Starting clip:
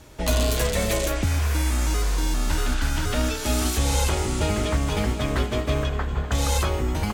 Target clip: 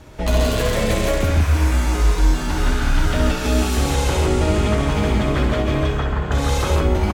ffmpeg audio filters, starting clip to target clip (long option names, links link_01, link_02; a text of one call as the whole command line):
ffmpeg -i in.wav -filter_complex "[0:a]highshelf=frequency=4300:gain=-10,asplit=2[link_01][link_02];[link_02]alimiter=limit=-21dB:level=0:latency=1,volume=-3dB[link_03];[link_01][link_03]amix=inputs=2:normalize=0,aecho=1:1:64.14|134.1|172:0.562|0.562|0.708" out.wav